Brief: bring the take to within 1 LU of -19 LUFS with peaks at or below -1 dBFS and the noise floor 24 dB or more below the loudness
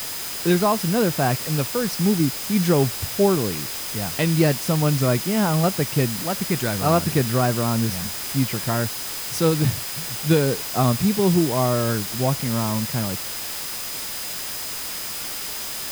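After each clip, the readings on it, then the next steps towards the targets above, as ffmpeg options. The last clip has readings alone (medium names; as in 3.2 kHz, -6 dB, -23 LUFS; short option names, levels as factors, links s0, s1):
steady tone 5 kHz; tone level -38 dBFS; noise floor -30 dBFS; noise floor target -46 dBFS; loudness -22.0 LUFS; peak level -6.0 dBFS; loudness target -19.0 LUFS
-> -af "bandreject=f=5000:w=30"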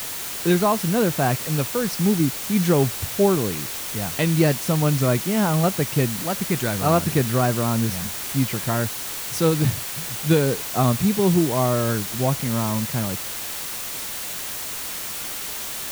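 steady tone not found; noise floor -31 dBFS; noise floor target -46 dBFS
-> -af "afftdn=nr=15:nf=-31"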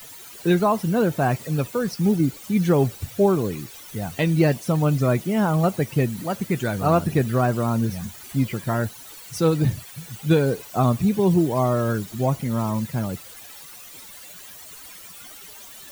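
noise floor -42 dBFS; noise floor target -47 dBFS
-> -af "afftdn=nr=6:nf=-42"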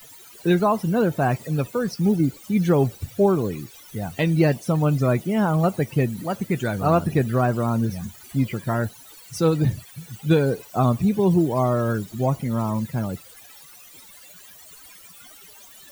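noise floor -47 dBFS; loudness -22.5 LUFS; peak level -6.5 dBFS; loudness target -19.0 LUFS
-> -af "volume=1.5"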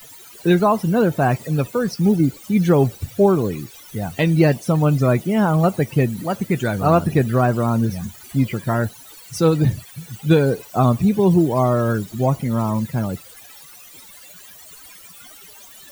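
loudness -19.0 LUFS; peak level -3.0 dBFS; noise floor -43 dBFS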